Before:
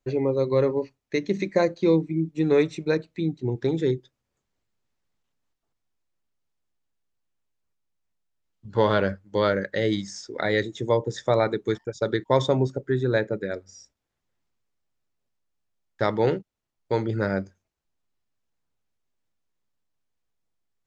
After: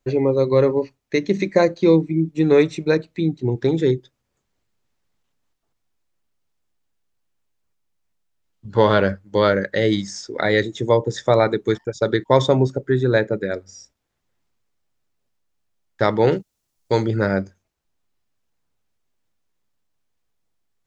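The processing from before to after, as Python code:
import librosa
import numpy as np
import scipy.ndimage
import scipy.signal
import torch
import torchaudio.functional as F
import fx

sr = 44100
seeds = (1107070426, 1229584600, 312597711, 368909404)

y = fx.bass_treble(x, sr, bass_db=1, treble_db=11, at=(16.32, 17.09))
y = y * 10.0 ** (5.5 / 20.0)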